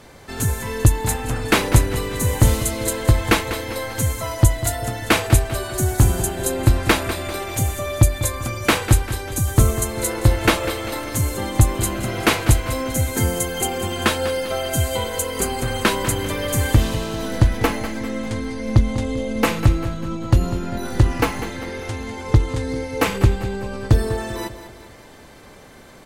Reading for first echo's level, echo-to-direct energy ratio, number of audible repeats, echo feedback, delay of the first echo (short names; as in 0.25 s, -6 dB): -12.5 dB, -11.5 dB, 4, 47%, 0.197 s